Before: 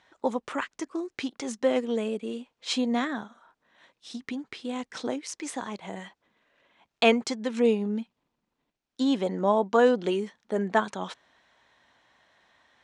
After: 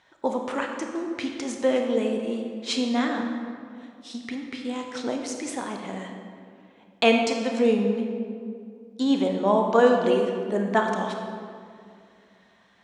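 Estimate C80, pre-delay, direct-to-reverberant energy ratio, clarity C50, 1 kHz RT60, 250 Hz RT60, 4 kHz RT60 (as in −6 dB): 5.0 dB, 25 ms, 2.5 dB, 4.0 dB, 2.2 s, 2.9 s, 1.3 s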